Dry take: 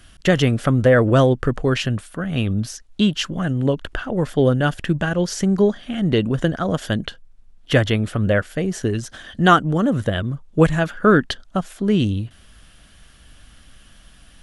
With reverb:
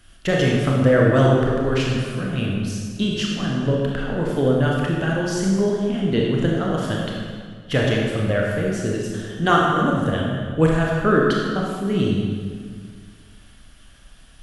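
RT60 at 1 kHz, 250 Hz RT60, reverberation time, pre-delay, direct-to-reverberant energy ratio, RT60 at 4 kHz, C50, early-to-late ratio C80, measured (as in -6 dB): 1.8 s, 2.1 s, 1.9 s, 25 ms, -3.0 dB, 1.4 s, -0.5 dB, 1.5 dB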